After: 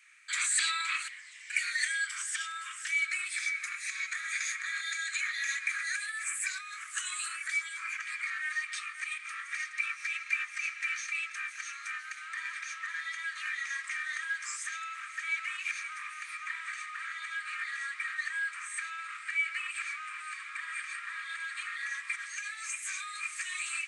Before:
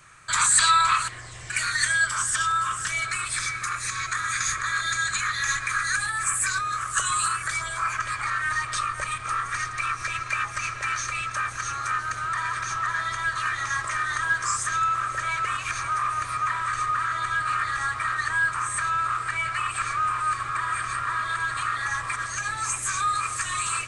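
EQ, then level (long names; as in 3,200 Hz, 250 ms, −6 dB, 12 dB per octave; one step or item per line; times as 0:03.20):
four-pole ladder high-pass 1,900 Hz, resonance 60%
0.0 dB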